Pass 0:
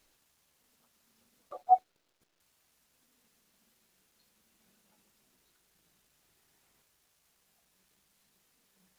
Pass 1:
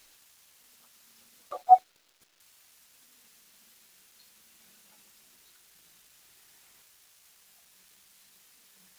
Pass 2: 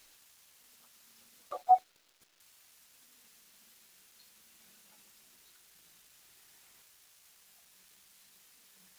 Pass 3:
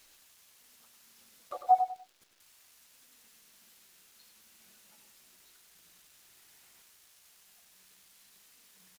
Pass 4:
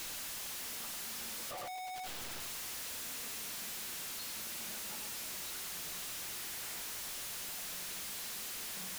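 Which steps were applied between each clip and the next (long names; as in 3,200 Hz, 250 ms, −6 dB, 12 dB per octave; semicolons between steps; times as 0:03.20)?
tilt shelving filter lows −5.5 dB; level +7.5 dB
brickwall limiter −12 dBFS, peak gain reduction 5.5 dB; level −2 dB
repeating echo 97 ms, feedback 25%, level −8 dB
sign of each sample alone; level −2.5 dB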